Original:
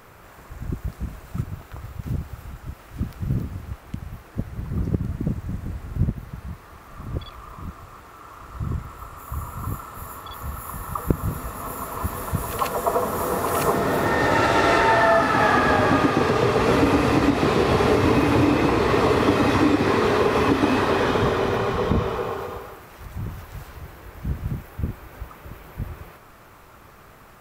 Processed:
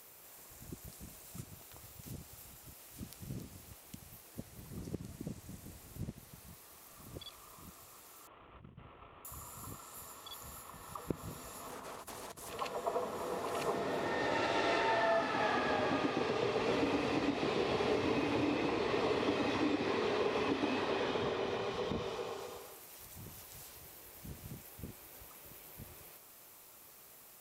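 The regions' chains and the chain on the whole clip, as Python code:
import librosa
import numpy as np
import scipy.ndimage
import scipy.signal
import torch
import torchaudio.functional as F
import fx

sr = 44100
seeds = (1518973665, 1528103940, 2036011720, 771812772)

y = fx.chain(x, sr, fx.cvsd(bps=16000),
    fx.lowpass(hz=1100.0, slope=6),
    fx.over_compress(threshold_db=-31.0, ratio=-0.5), at=(8.27, 9.25))
y = fx.chain(y, sr, fx.over_compress(threshold_db=-33.0, ratio=-1.0),
    fx.doppler_dist(depth_ms=0.53), at=(11.69, 12.49))
y = fx.riaa(y, sr, side='recording')
y = fx.env_lowpass_down(y, sr, base_hz=2900.0, full_db=-20.0)
y = fx.peak_eq(y, sr, hz=1400.0, db=-10.0, octaves=1.4)
y = y * 10.0 ** (-9.0 / 20.0)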